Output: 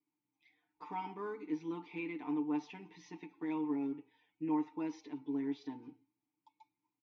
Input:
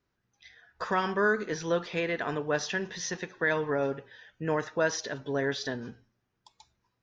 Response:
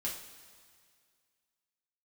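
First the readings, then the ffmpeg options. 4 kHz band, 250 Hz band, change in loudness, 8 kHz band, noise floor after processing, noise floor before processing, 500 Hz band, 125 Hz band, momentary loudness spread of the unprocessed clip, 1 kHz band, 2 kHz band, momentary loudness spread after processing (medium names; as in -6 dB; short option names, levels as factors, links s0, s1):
under -20 dB, -1.0 dB, -9.0 dB, no reading, under -85 dBFS, -80 dBFS, -16.5 dB, -15.0 dB, 9 LU, -10.5 dB, -21.5 dB, 16 LU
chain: -filter_complex "[0:a]acrusher=bits=8:mode=log:mix=0:aa=0.000001,asplit=3[s0][s1][s2];[s0]bandpass=f=300:t=q:w=8,volume=1[s3];[s1]bandpass=f=870:t=q:w=8,volume=0.501[s4];[s2]bandpass=f=2240:t=q:w=8,volume=0.355[s5];[s3][s4][s5]amix=inputs=3:normalize=0,aecho=1:1:6.7:0.8"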